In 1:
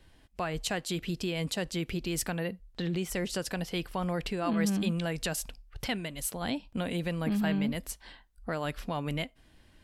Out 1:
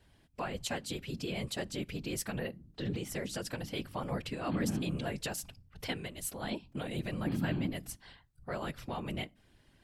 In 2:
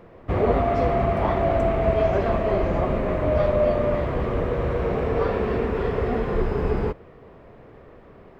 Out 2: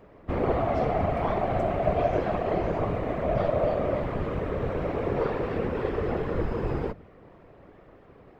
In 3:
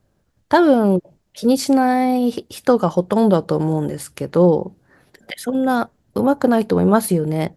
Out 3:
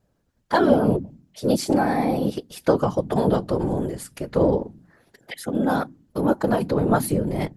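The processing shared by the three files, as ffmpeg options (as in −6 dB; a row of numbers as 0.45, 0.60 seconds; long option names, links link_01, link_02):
-af "bandreject=frequency=45.27:width_type=h:width=4,bandreject=frequency=90.54:width_type=h:width=4,bandreject=frequency=135.81:width_type=h:width=4,bandreject=frequency=181.08:width_type=h:width=4,bandreject=frequency=226.35:width_type=h:width=4,afftfilt=real='hypot(re,im)*cos(2*PI*random(0))':imag='hypot(re,im)*sin(2*PI*random(1))':win_size=512:overlap=0.75,volume=1.5dB"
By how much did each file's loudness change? −5.0, −4.5, −5.0 LU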